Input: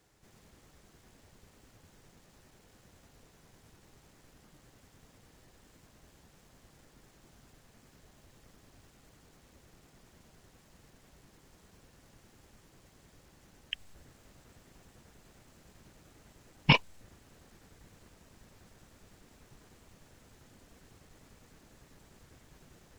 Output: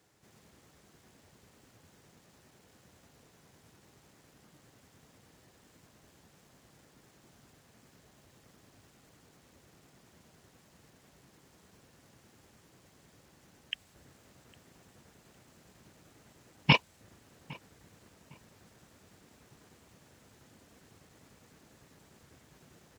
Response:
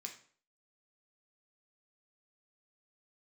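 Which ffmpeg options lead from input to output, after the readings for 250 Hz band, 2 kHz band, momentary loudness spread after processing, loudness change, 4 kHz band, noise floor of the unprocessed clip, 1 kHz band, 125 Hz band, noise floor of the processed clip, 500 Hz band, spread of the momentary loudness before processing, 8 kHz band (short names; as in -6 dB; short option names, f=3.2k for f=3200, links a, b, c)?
0.0 dB, 0.0 dB, 24 LU, -1.5 dB, 0.0 dB, -63 dBFS, 0.0 dB, -0.5 dB, -64 dBFS, 0.0 dB, 16 LU, 0.0 dB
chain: -filter_complex "[0:a]highpass=86,asplit=2[a][b];[b]adelay=807,lowpass=f=2.2k:p=1,volume=-22dB,asplit=2[c][d];[d]adelay=807,lowpass=f=2.2k:p=1,volume=0.31[e];[c][e]amix=inputs=2:normalize=0[f];[a][f]amix=inputs=2:normalize=0"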